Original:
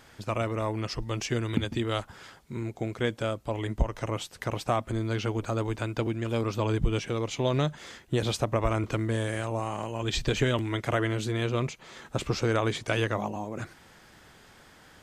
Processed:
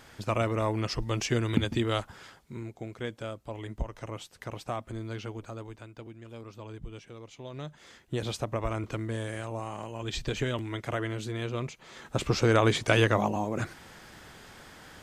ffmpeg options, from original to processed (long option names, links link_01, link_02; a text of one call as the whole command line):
ffmpeg -i in.wav -af "volume=22dB,afade=type=out:start_time=1.8:duration=0.96:silence=0.354813,afade=type=out:start_time=5.11:duration=0.78:silence=0.375837,afade=type=in:start_time=7.52:duration=0.65:silence=0.281838,afade=type=in:start_time=11.69:duration=1.02:silence=0.334965" out.wav